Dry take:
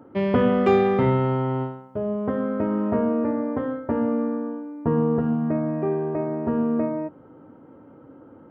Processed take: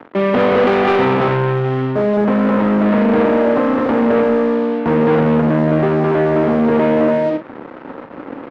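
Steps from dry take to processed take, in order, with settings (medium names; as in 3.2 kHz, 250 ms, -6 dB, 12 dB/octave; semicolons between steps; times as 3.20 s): loudspeakers at several distances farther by 59 m -9 dB, 73 m -1 dB, 99 m -3 dB; waveshaping leveller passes 5; doubling 39 ms -9 dB; in parallel at -3 dB: compression, threshold -20 dBFS, peak gain reduction 13.5 dB; on the sum: three-band isolator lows -14 dB, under 170 Hz, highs -22 dB, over 3.6 kHz; trim -6 dB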